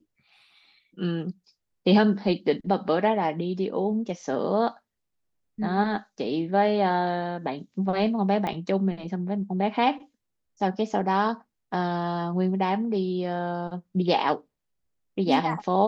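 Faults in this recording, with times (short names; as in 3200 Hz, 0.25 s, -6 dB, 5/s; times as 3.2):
8.47 pop -17 dBFS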